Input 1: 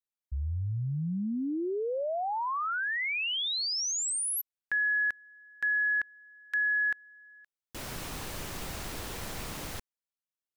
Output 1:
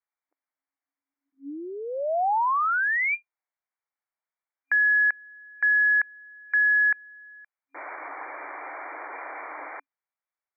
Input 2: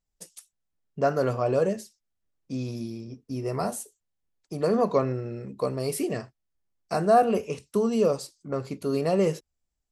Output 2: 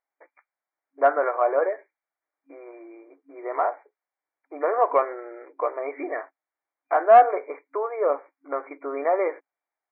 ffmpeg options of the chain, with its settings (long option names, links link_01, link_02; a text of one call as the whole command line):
ffmpeg -i in.wav -af "afftfilt=real='re*between(b*sr/4096,270,2400)':imag='im*between(b*sr/4096,270,2400)':win_size=4096:overlap=0.75,lowshelf=frequency=550:width_type=q:width=1.5:gain=-8.5,acontrast=68" out.wav